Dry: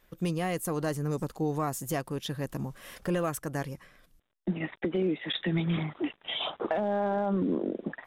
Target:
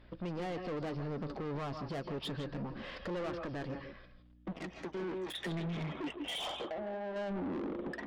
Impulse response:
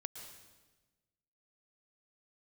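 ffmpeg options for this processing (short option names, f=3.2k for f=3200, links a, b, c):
-filter_complex "[0:a]aresample=11025,aresample=44100,asplit=3[a][b][c];[a]afade=t=out:st=4.5:d=0.02[d];[b]aeval=exprs='0.133*(cos(1*acos(clip(val(0)/0.133,-1,1)))-cos(1*PI/2))+0.00841*(cos(3*acos(clip(val(0)/0.133,-1,1)))-cos(3*PI/2))+0.0188*(cos(7*acos(clip(val(0)/0.133,-1,1)))-cos(7*PI/2))':c=same,afade=t=in:st=4.5:d=0.02,afade=t=out:st=5.33:d=0.02[e];[c]afade=t=in:st=5.33:d=0.02[f];[d][e][f]amix=inputs=3:normalize=0,aeval=exprs='val(0)+0.000891*(sin(2*PI*60*n/s)+sin(2*PI*2*60*n/s)/2+sin(2*PI*3*60*n/s)/3+sin(2*PI*4*60*n/s)/4+sin(2*PI*5*60*n/s)/5)':c=same,asettb=1/sr,asplit=3[g][h][i];[g]atrim=end=6.534[j];[h]atrim=start=6.53:end=7.16,asetpts=PTS-STARTPTS,afade=t=in:d=0.004:c=qsin,afade=t=out:st=0.626:d=0.004:c=qsin,acompressor=threshold=-43dB:ratio=3[k];[i]atrim=start=7.156[l];[j][k]acrossfade=d=0.004:c1=hsin:c2=qsin[m];[m][l]acrossfade=d=0.004:c1=qsin:c2=hsin,alimiter=level_in=3dB:limit=-24dB:level=0:latency=1:release=66,volume=-3dB,equalizer=f=480:t=o:w=1.9:g=4[n];[1:a]atrim=start_sample=2205,atrim=end_sample=6174,asetrate=34398,aresample=44100[o];[n][o]afir=irnorm=-1:irlink=0,asoftclip=type=tanh:threshold=-39.5dB,flanger=delay=3.1:depth=2:regen=-66:speed=0.28:shape=triangular,volume=8.5dB"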